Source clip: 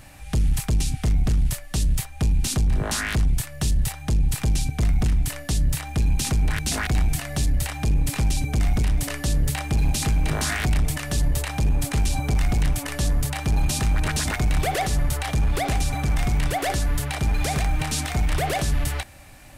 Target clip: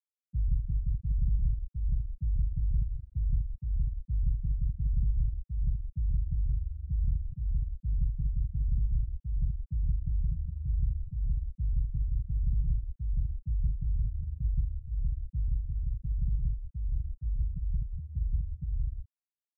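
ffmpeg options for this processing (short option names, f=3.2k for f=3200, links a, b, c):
-filter_complex "[0:a]asplit=2[a][b];[b]aecho=0:1:134.1|172:0.282|0.631[c];[a][c]amix=inputs=2:normalize=0,agate=range=-33dB:threshold=-21dB:ratio=3:detection=peak,acrossover=split=170[d][e];[e]acompressor=threshold=-38dB:ratio=2.5[f];[d][f]amix=inputs=2:normalize=0,afftfilt=real='re*gte(hypot(re,im),0.398)':imag='im*gte(hypot(re,im),0.398)':win_size=1024:overlap=0.75,volume=-9dB"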